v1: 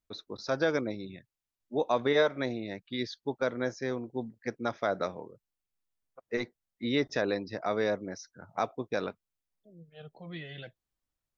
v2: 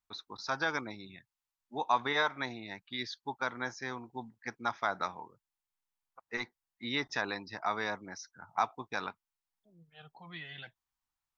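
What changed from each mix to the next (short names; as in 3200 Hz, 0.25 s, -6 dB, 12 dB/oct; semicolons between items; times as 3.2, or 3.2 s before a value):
master: add resonant low shelf 700 Hz -7.5 dB, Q 3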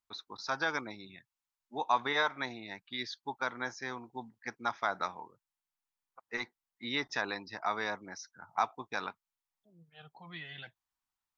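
first voice: add low shelf 150 Hz -6 dB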